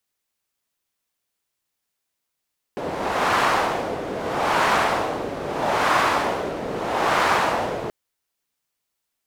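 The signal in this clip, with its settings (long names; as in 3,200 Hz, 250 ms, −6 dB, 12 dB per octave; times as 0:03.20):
wind from filtered noise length 5.13 s, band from 480 Hz, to 1,100 Hz, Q 1.3, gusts 4, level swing 10 dB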